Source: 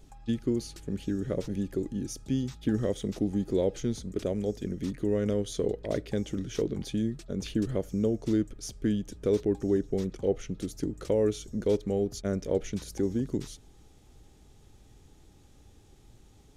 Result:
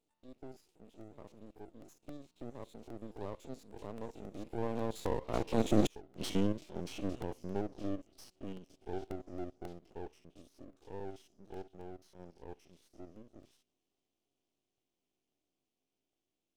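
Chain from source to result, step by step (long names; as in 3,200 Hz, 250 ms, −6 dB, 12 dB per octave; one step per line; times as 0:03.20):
spectrum averaged block by block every 50 ms
source passing by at 0:05.94, 33 m/s, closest 1.7 metres
high-pass filter 250 Hz 12 dB per octave
high shelf with overshoot 2,100 Hz +6 dB, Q 3
gate with flip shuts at −38 dBFS, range −39 dB
parametric band 330 Hz +11.5 dB 2.8 octaves
half-wave rectification
regular buffer underruns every 0.27 s, samples 64, repeat, from 0:00.74
level +15.5 dB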